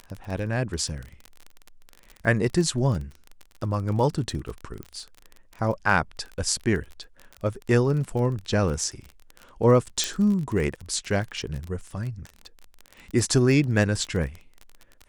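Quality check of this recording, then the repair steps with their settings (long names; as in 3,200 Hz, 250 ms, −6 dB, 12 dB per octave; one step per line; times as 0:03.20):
surface crackle 27 per second −30 dBFS
0:04.83: click −23 dBFS
0:10.04: click −9 dBFS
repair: click removal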